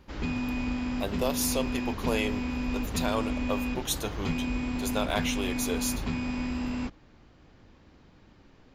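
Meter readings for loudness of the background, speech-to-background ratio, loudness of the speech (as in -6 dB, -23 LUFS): -32.0 LUFS, -0.5 dB, -32.5 LUFS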